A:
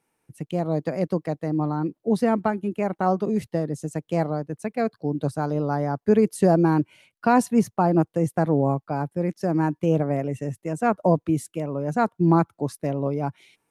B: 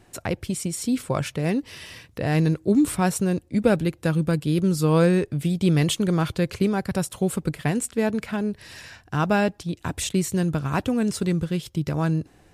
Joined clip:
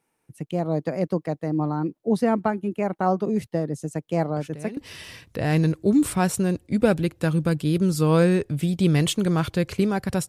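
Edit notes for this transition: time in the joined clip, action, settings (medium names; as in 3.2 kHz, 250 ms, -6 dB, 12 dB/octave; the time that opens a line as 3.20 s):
A
4.36 s: add B from 1.18 s 0.41 s -13.5 dB
4.77 s: go over to B from 1.59 s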